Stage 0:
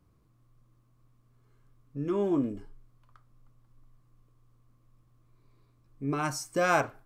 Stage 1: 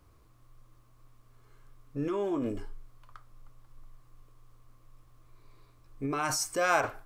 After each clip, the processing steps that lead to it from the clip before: bell 180 Hz -12 dB 1.6 oct; in parallel at -1 dB: negative-ratio compressor -39 dBFS, ratio -0.5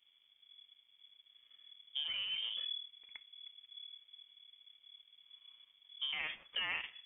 compressor 5:1, threshold -35 dBFS, peak gain reduction 13.5 dB; power-law curve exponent 1.4; inverted band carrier 3400 Hz; gain +1.5 dB

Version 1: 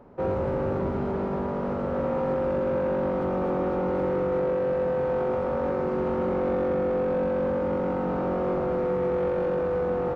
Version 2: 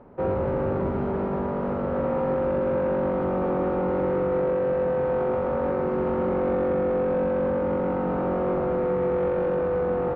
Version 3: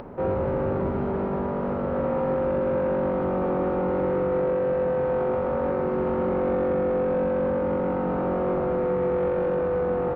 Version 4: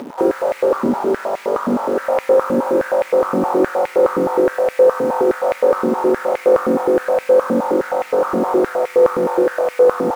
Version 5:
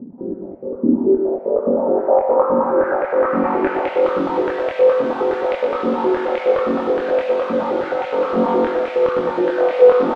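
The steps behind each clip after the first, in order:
LPF 3000 Hz 12 dB/oct; gain +1.5 dB
upward compressor, threshold -31 dBFS
in parallel at -6.5 dB: requantised 6-bit, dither none; on the sum: stepped high-pass 9.6 Hz 250–2200 Hz; gain +1.5 dB
low-pass sweep 210 Hz -> 3400 Hz, 0.48–4.05; chorus voices 4, 0.37 Hz, delay 24 ms, depth 2.2 ms; loudspeakers at several distances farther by 41 m -7 dB, 73 m -10 dB

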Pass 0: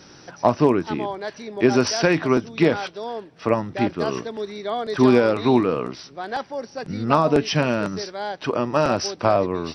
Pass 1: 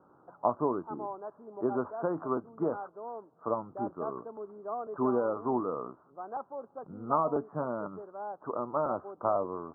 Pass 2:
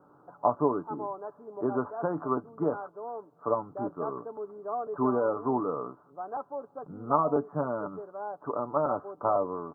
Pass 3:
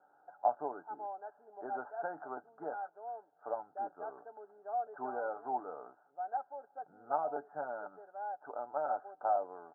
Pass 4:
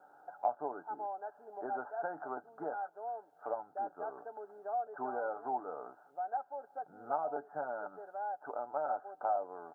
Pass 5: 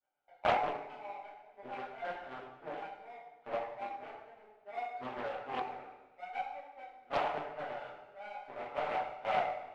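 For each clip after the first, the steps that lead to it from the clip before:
steep low-pass 1300 Hz 72 dB/oct; tilt +3.5 dB/oct; gain -8 dB
comb 6.9 ms, depth 36%; gain +2 dB
double band-pass 1100 Hz, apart 1 oct; gain +2 dB
compressor 1.5:1, threshold -52 dBFS, peak gain reduction 10 dB; gain +7 dB
power-law curve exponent 2; two-slope reverb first 0.78 s, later 2.4 s, DRR -10 dB; Doppler distortion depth 0.44 ms

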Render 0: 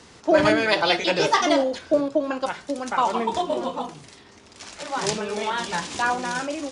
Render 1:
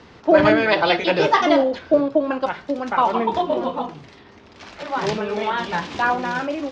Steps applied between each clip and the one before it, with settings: air absorption 220 m; gain +4.5 dB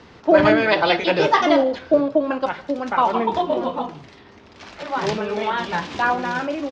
echo 0.155 s -23.5 dB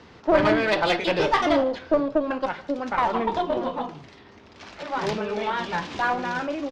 one diode to ground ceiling -15.5 dBFS; gain -2.5 dB

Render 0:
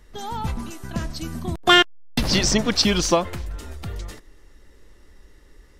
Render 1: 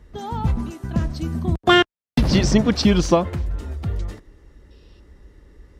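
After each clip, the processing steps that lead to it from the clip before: HPF 58 Hz; spectral gain 4.71–5, 2400–5700 Hz +11 dB; tilt -2.5 dB/oct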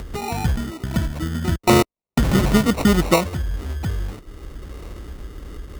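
sample-and-hold 27×; upward compressor, threshold -21 dBFS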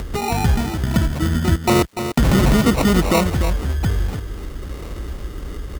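limiter -12.5 dBFS, peak gain reduction 10 dB; crackle 570/s -48 dBFS; echo 0.294 s -9 dB; gain +5 dB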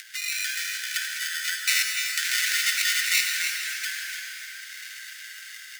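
AGC gain up to 3.5 dB; rippled Chebyshev high-pass 1500 Hz, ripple 3 dB; on a send at -1.5 dB: reverb RT60 4.6 s, pre-delay 63 ms; on the sum: gain +1.5 dB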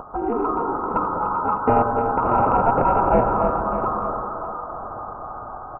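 in parallel at -11 dB: hard clip -21.5 dBFS, distortion -10 dB; on the sum: echo 0.603 s -13 dB; inverted band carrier 2800 Hz; gain +8 dB

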